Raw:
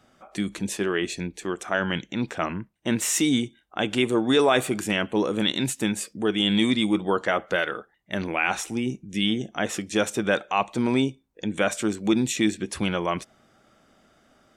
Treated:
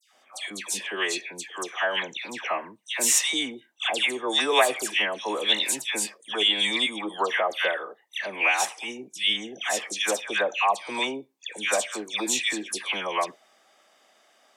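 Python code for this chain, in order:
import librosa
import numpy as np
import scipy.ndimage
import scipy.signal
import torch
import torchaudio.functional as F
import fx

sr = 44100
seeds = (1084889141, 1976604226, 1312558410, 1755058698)

y = scipy.signal.sosfilt(scipy.signal.butter(2, 750.0, 'highpass', fs=sr, output='sos'), x)
y = fx.peak_eq(y, sr, hz=1400.0, db=-12.5, octaves=0.23)
y = fx.dispersion(y, sr, late='lows', ms=132.0, hz=1800.0)
y = y * librosa.db_to_amplitude(4.5)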